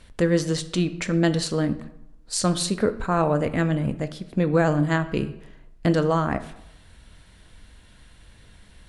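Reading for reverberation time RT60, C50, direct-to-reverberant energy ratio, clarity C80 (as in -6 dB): 0.80 s, 14.5 dB, 10.0 dB, 16.5 dB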